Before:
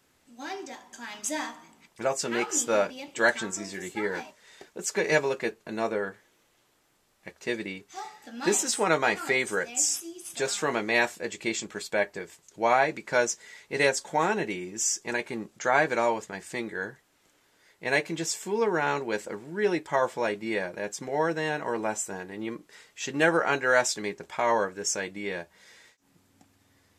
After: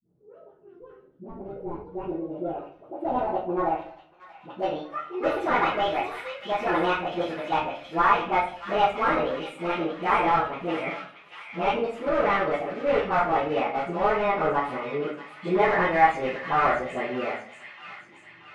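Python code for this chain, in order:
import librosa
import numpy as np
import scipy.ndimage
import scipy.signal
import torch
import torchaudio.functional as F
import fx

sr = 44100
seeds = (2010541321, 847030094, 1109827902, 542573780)

p1 = fx.speed_glide(x, sr, from_pct=170, to_pct=121)
p2 = scipy.signal.sosfilt(scipy.signal.butter(2, 95.0, 'highpass', fs=sr, output='sos'), p1)
p3 = fx.high_shelf(p2, sr, hz=3100.0, db=-6.5)
p4 = fx.dispersion(p3, sr, late='highs', ms=74.0, hz=430.0)
p5 = (np.mod(10.0 ** (22.5 / 20.0) * p4 + 1.0, 2.0) - 1.0) / 10.0 ** (22.5 / 20.0)
p6 = p4 + (p5 * librosa.db_to_amplitude(-7.0))
p7 = fx.filter_sweep_lowpass(p6, sr, from_hz=250.0, to_hz=1800.0, start_s=1.35, end_s=4.67, q=0.86)
p8 = p7 + fx.echo_wet_highpass(p7, sr, ms=631, feedback_pct=53, hz=2400.0, wet_db=-4.5, dry=0)
p9 = fx.room_shoebox(p8, sr, seeds[0], volume_m3=49.0, walls='mixed', distance_m=1.2)
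y = p9 * librosa.db_to_amplitude(-4.0)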